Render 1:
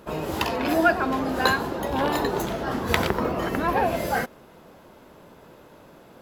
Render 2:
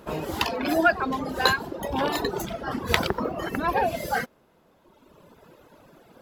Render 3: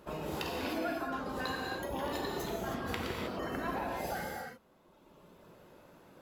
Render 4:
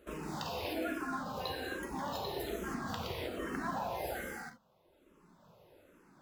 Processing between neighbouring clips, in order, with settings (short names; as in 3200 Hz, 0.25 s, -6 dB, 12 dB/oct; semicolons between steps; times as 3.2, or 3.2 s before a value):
reverb removal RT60 1.8 s; dynamic EQ 4300 Hz, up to +4 dB, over -41 dBFS, Q 1.2
compressor, threshold -28 dBFS, peak gain reduction 13 dB; non-linear reverb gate 0.34 s flat, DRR -2 dB; gain -8.5 dB
in parallel at -8 dB: bit-crush 7-bit; on the sum: endless phaser -1.2 Hz; gain -2 dB